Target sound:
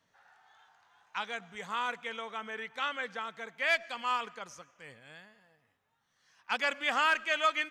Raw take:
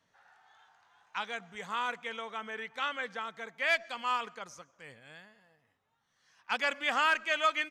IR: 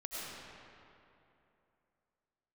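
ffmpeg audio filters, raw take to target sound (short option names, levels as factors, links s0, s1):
-filter_complex "[0:a]asplit=2[s0][s1];[s1]highpass=1500[s2];[1:a]atrim=start_sample=2205[s3];[s2][s3]afir=irnorm=-1:irlink=0,volume=0.0668[s4];[s0][s4]amix=inputs=2:normalize=0"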